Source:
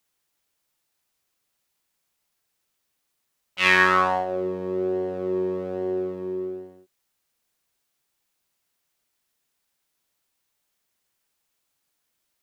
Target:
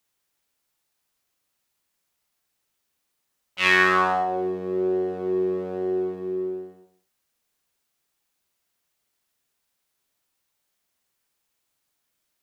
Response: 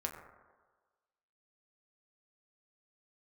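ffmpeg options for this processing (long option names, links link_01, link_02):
-filter_complex "[0:a]asplit=2[link_01][link_02];[1:a]atrim=start_sample=2205,afade=type=out:start_time=0.24:duration=0.01,atrim=end_sample=11025,adelay=46[link_03];[link_02][link_03]afir=irnorm=-1:irlink=0,volume=-7dB[link_04];[link_01][link_04]amix=inputs=2:normalize=0,volume=-1dB"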